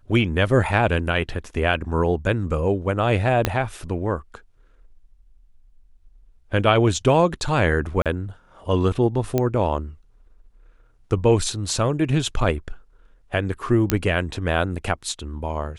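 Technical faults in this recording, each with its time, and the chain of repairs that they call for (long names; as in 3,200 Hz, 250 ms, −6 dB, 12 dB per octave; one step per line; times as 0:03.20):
0:03.45: click −4 dBFS
0:08.02–0:08.06: drop-out 37 ms
0:09.38: click −8 dBFS
0:13.90: click −2 dBFS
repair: click removal
repair the gap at 0:08.02, 37 ms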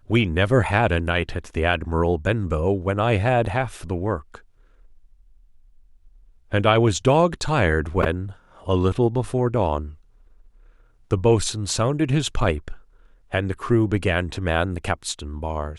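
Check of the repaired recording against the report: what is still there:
0:03.45: click
0:09.38: click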